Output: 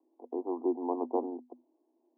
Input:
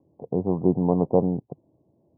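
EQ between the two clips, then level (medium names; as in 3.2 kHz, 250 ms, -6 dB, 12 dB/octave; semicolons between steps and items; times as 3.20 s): rippled Chebyshev high-pass 240 Hz, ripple 9 dB; band-stop 560 Hz, Q 12; -2.5 dB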